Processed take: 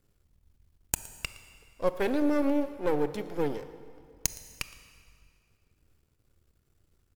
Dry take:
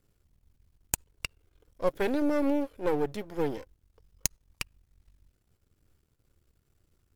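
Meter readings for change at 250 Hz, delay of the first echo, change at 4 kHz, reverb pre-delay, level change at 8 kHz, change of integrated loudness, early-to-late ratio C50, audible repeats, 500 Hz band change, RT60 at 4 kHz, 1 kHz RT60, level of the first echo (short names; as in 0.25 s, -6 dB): +1.0 dB, 0.115 s, +0.5 dB, 22 ms, 0.0 dB, +0.5 dB, 11.5 dB, 1, +0.5 dB, 1.9 s, 2.2 s, -20.5 dB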